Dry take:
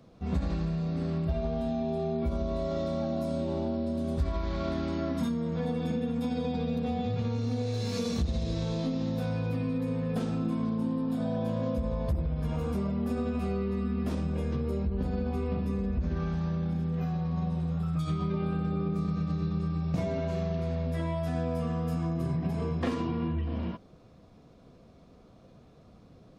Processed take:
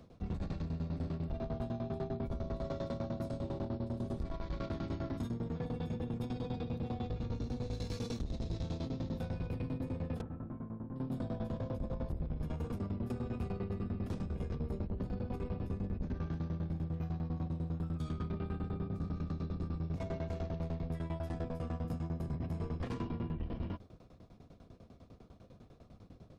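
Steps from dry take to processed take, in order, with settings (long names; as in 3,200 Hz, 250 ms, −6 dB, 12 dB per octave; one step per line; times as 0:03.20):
sub-octave generator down 1 octave, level 0 dB
brickwall limiter −25 dBFS, peak gain reduction 9.5 dB
shaped tremolo saw down 10 Hz, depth 95%
soft clipping −32 dBFS, distortion −14 dB
0:10.21–0:10.96: transistor ladder low-pass 2,000 Hz, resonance 25%
level +1 dB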